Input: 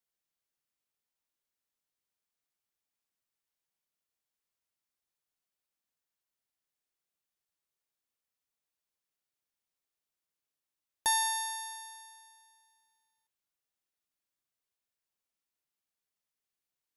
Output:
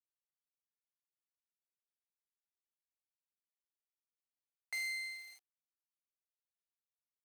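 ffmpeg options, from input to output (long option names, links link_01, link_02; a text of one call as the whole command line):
ffmpeg -i in.wav -filter_complex "[0:a]bass=frequency=250:gain=-2,treble=frequency=4000:gain=-11,asplit=2[link_01][link_02];[link_02]acompressor=threshold=-47dB:ratio=8,volume=0.5dB[link_03];[link_01][link_03]amix=inputs=2:normalize=0,volume=36dB,asoftclip=hard,volume=-36dB,adynamicsmooth=sensitivity=6.5:basefreq=3000,asoftclip=type=tanh:threshold=-39.5dB,acrusher=bits=9:mix=0:aa=0.000001,highpass=frequency=140:width=0.5412,highpass=frequency=140:width=1.3066,equalizer=frequency=320:width_type=q:width=4:gain=9,equalizer=frequency=1200:width_type=q:width=4:gain=4,equalizer=frequency=2200:width_type=q:width=4:gain=4,lowpass=frequency=7700:width=0.5412,lowpass=frequency=7700:width=1.3066,asetrate=103194,aresample=44100,volume=3dB" out.wav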